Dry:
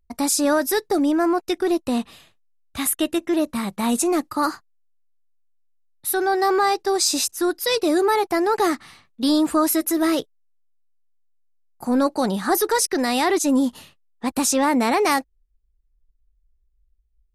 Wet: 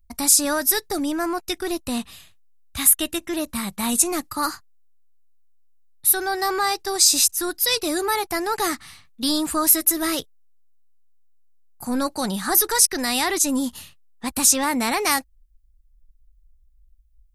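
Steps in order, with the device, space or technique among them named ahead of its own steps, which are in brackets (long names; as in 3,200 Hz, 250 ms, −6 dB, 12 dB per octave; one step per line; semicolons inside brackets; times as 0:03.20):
smiley-face EQ (low-shelf EQ 110 Hz +8 dB; parametric band 410 Hz −9 dB 2.6 octaves; high-shelf EQ 7,100 Hz +9 dB)
level +1.5 dB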